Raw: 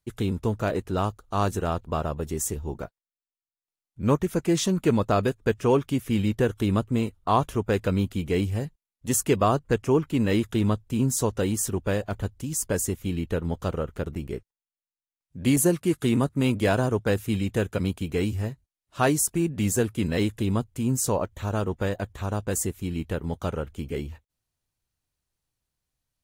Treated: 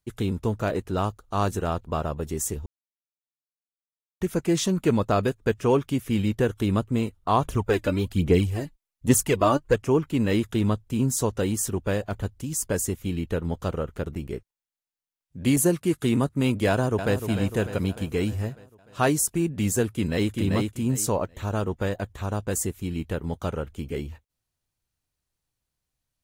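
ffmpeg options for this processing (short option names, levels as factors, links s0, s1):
-filter_complex "[0:a]asettb=1/sr,asplit=3[s0][s1][s2];[s0]atrim=end=7.454[s3];[s1]atrim=start=7.45:end=9.76,asetpts=PTS-STARTPTS,afade=t=in:d=0.004:c=qsin,afade=t=out:st=2.306:d=0.004:c=qsin,aphaser=in_gain=1:out_gain=1:delay=3.5:decay=0.6:speed=1.2:type=sinusoidal[s4];[s2]atrim=start=9.756[s5];[s3][s4]acrossfade=d=0.004:c1=hsin:c2=qsin[s6];[s6][s5]acrossfade=d=0.004:c1=qsin:c2=hsin,asplit=2[s7][s8];[s8]afade=t=in:st=16.68:d=0.01,afade=t=out:st=17.24:d=0.01,aecho=0:1:300|600|900|1200|1500|1800|2100:0.354813|0.212888|0.127733|0.0766397|0.0459838|0.0275903|0.0165542[s9];[s7][s9]amix=inputs=2:normalize=0,asplit=2[s10][s11];[s11]afade=t=in:st=19.88:d=0.01,afade=t=out:st=20.33:d=0.01,aecho=0:1:390|780|1170:0.707946|0.141589|0.0283178[s12];[s10][s12]amix=inputs=2:normalize=0,asplit=3[s13][s14][s15];[s13]atrim=end=2.66,asetpts=PTS-STARTPTS,afade=t=out:st=2.656:d=0.004:c=hsin[s16];[s14]atrim=start=2.66:end=4.21,asetpts=PTS-STARTPTS,volume=0[s17];[s15]atrim=start=4.21,asetpts=PTS-STARTPTS,afade=t=in:d=0.004:c=hsin[s18];[s16][s17][s18]concat=n=3:v=0:a=1"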